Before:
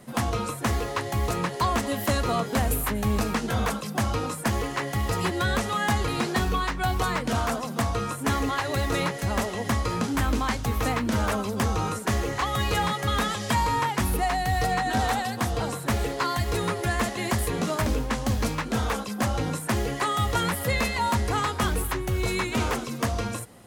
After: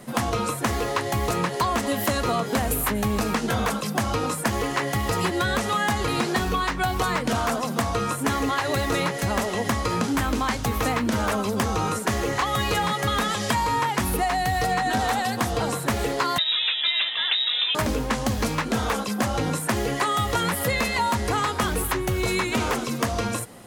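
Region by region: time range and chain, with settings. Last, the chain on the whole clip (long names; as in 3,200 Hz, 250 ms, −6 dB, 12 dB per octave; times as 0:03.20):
0:16.38–0:17.75: voice inversion scrambler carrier 3,800 Hz + high-pass filter 840 Hz 6 dB per octave
whole clip: parametric band 63 Hz −6.5 dB 1.6 octaves; downward compressor, threshold −26 dBFS; level +6 dB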